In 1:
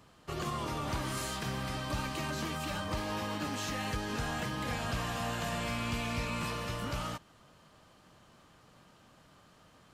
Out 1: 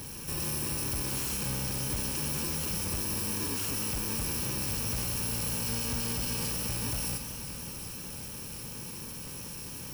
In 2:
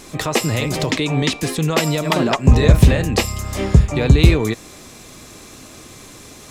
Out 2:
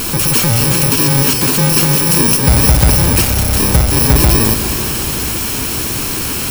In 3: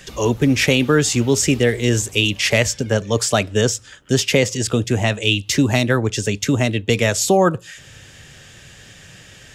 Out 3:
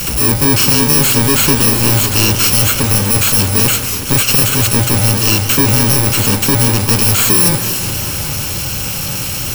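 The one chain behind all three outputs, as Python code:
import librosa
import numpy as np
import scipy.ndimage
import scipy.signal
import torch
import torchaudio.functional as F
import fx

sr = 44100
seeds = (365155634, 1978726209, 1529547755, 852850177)

y = fx.bit_reversed(x, sr, seeds[0], block=64)
y = fx.power_curve(y, sr, exponent=0.35)
y = fx.echo_warbled(y, sr, ms=186, feedback_pct=79, rate_hz=2.8, cents=164, wet_db=-12.0)
y = y * 10.0 ** (-3.5 / 20.0)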